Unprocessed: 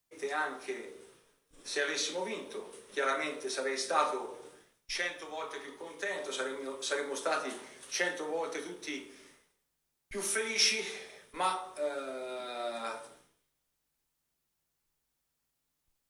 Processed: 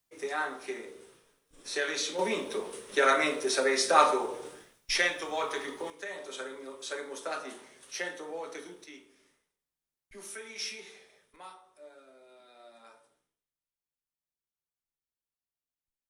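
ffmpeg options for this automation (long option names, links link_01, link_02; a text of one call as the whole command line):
ffmpeg -i in.wav -af "asetnsamples=nb_out_samples=441:pad=0,asendcmd='2.19 volume volume 7.5dB;5.9 volume volume -4dB;8.84 volume volume -10.5dB;11.36 volume volume -17dB',volume=1dB" out.wav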